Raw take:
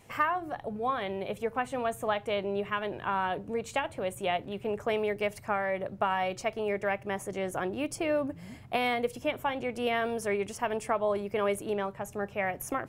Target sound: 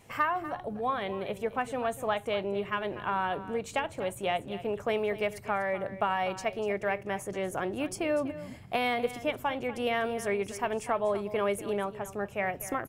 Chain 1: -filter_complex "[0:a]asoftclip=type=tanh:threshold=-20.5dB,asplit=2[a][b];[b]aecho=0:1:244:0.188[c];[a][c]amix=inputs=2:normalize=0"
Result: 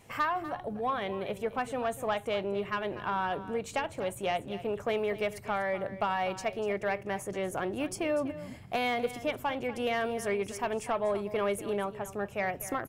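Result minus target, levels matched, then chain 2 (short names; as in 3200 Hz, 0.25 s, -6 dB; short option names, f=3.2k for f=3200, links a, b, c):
soft clip: distortion +16 dB
-filter_complex "[0:a]asoftclip=type=tanh:threshold=-11dB,asplit=2[a][b];[b]aecho=0:1:244:0.188[c];[a][c]amix=inputs=2:normalize=0"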